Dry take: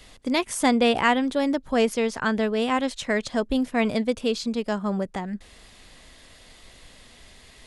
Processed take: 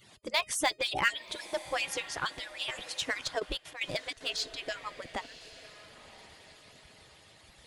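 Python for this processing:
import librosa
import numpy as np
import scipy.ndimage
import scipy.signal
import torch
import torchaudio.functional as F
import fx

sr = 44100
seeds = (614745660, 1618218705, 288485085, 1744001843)

p1 = fx.hpss_only(x, sr, part='percussive')
p2 = fx.dynamic_eq(p1, sr, hz=3600.0, q=0.77, threshold_db=-45.0, ratio=4.0, max_db=5)
p3 = 10.0 ** (-22.5 / 20.0) * (np.abs((p2 / 10.0 ** (-22.5 / 20.0) + 3.0) % 4.0 - 2.0) - 1.0)
p4 = p2 + (p3 * 10.0 ** (-10.5 / 20.0))
p5 = fx.comb_fb(p4, sr, f0_hz=620.0, decay_s=0.24, harmonics='all', damping=0.0, mix_pct=40)
p6 = p5 + fx.echo_diffused(p5, sr, ms=1052, feedback_pct=44, wet_db=-15.5, dry=0)
p7 = fx.step_gate(p6, sr, bpm=189, pattern='xx.xx.x.xx', floor_db=-12.0, edge_ms=4.5, at=(3.38, 4.36), fade=0.02)
y = p7 * 10.0 ** (-1.5 / 20.0)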